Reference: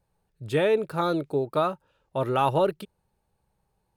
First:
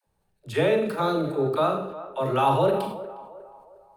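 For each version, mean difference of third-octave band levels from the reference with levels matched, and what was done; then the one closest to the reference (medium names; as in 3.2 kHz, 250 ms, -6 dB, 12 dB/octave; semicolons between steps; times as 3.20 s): 6.5 dB: phase dispersion lows, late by 74 ms, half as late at 330 Hz; on a send: band-passed feedback delay 358 ms, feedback 45%, band-pass 730 Hz, level -14 dB; on the sum: Schroeder reverb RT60 0.5 s, combs from 29 ms, DRR 4 dB; decay stretcher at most 60 dB/s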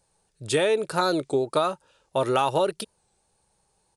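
5.0 dB: tone controls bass -7 dB, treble +13 dB; resampled via 22.05 kHz; compression, threshold -24 dBFS, peak gain reduction 7 dB; warped record 33 1/3 rpm, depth 100 cents; trim +5.5 dB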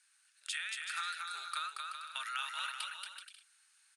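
21.5 dB: Chebyshev band-pass 1.4–9.7 kHz, order 4; treble shelf 6.7 kHz +9.5 dB; compression 6:1, threshold -52 dBFS, peak gain reduction 21 dB; on a send: bouncing-ball echo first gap 230 ms, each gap 0.65×, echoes 5; on the sum: trim +13 dB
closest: second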